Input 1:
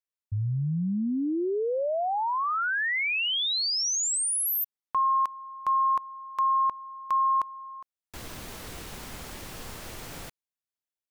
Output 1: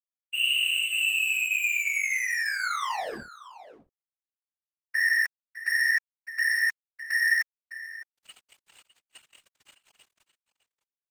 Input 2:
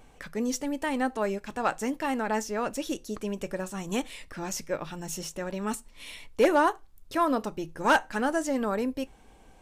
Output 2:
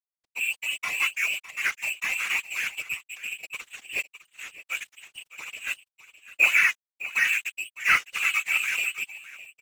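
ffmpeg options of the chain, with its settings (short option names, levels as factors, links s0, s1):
-filter_complex "[0:a]bandreject=f=186.9:t=h:w=4,bandreject=f=373.8:t=h:w=4,bandreject=f=560.7:t=h:w=4,bandreject=f=747.6:t=h:w=4,bandreject=f=934.5:t=h:w=4,bandreject=f=1121.4:t=h:w=4,bandreject=f=1308.3:t=h:w=4,bandreject=f=1495.2:t=h:w=4,bandreject=f=1682.1:t=h:w=4,bandreject=f=1869:t=h:w=4,bandreject=f=2055.9:t=h:w=4,bandreject=f=2242.8:t=h:w=4,bandreject=f=2429.7:t=h:w=4,bandreject=f=2616.6:t=h:w=4,bandreject=f=2803.5:t=h:w=4,bandreject=f=2990.4:t=h:w=4,bandreject=f=3177.3:t=h:w=4,bandreject=f=3364.2:t=h:w=4,bandreject=f=3551.1:t=h:w=4,bandreject=f=3738:t=h:w=4,bandreject=f=3924.9:t=h:w=4,bandreject=f=4111.8:t=h:w=4,bandreject=f=4298.7:t=h:w=4,bandreject=f=4485.6:t=h:w=4,bandreject=f=4672.5:t=h:w=4,bandreject=f=4859.4:t=h:w=4,bandreject=f=5046.3:t=h:w=4,bandreject=f=5233.2:t=h:w=4,bandreject=f=5420.1:t=h:w=4,bandreject=f=5607:t=h:w=4,bandreject=f=5793.9:t=h:w=4,bandreject=f=5980.8:t=h:w=4,bandreject=f=6167.7:t=h:w=4,agate=range=0.0224:threshold=0.0112:ratio=3:release=55:detection=peak,lowshelf=f=97:g=9,acrossover=split=220[s0][s1];[s0]aeval=exprs='max(val(0),0)':c=same[s2];[s2][s1]amix=inputs=2:normalize=0,lowpass=f=2500:t=q:w=0.5098,lowpass=f=2500:t=q:w=0.6013,lowpass=f=2500:t=q:w=0.9,lowpass=f=2500:t=q:w=2.563,afreqshift=-2900,aeval=exprs='sgn(val(0))*max(abs(val(0))-0.0168,0)':c=same,aecho=1:1:608:0.178,afftfilt=real='hypot(re,im)*cos(2*PI*random(0))':imag='hypot(re,im)*sin(2*PI*random(1))':win_size=512:overlap=0.75,adynamicequalizer=threshold=0.00631:dfrequency=2100:dqfactor=0.7:tfrequency=2100:tqfactor=0.7:attack=5:release=100:ratio=0.375:range=3.5:mode=boostabove:tftype=highshelf,volume=1.88"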